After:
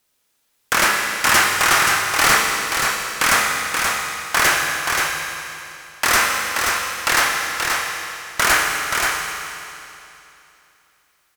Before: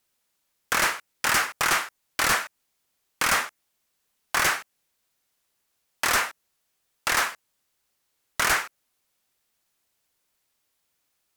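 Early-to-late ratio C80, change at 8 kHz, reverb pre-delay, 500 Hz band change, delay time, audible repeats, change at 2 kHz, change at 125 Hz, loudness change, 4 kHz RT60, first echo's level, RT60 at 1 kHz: 0.0 dB, +9.5 dB, 24 ms, +9.0 dB, 529 ms, 1, +9.5 dB, +9.0 dB, +7.0 dB, 2.8 s, -4.5 dB, 2.9 s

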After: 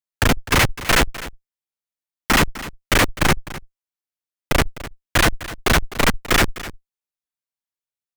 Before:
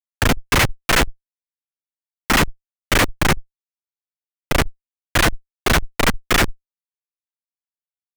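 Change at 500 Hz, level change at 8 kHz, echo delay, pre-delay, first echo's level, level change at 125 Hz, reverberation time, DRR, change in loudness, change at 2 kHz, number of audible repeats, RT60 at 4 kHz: 0.0 dB, 0.0 dB, 254 ms, no reverb, -16.0 dB, 0.0 dB, no reverb, no reverb, 0.0 dB, 0.0 dB, 1, no reverb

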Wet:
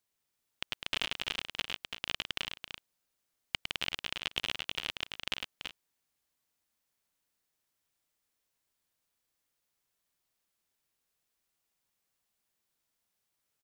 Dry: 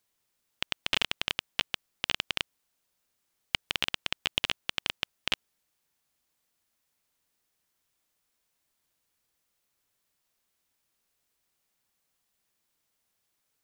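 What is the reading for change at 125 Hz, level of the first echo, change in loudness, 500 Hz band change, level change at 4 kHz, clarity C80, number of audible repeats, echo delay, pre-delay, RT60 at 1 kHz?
-4.5 dB, -6.0 dB, -4.5 dB, -4.5 dB, -4.0 dB, no reverb, 3, 106 ms, no reverb, no reverb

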